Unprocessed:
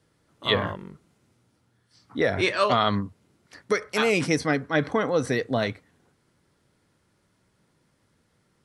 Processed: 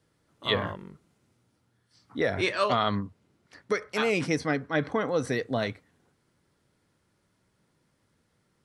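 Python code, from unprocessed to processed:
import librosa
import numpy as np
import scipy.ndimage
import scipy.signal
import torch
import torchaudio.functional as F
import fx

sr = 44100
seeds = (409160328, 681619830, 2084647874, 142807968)

y = fx.high_shelf(x, sr, hz=7600.0, db=-7.5, at=(2.75, 5.08))
y = y * 10.0 ** (-3.5 / 20.0)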